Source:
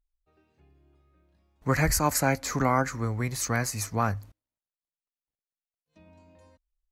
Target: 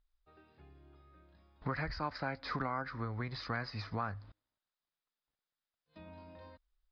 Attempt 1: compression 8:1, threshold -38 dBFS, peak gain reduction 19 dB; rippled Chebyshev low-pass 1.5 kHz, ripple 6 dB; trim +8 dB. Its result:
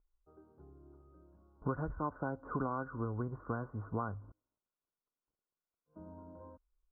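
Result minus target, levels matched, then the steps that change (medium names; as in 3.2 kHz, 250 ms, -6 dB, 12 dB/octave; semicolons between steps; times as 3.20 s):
2 kHz band -7.0 dB
change: rippled Chebyshev low-pass 5.1 kHz, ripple 6 dB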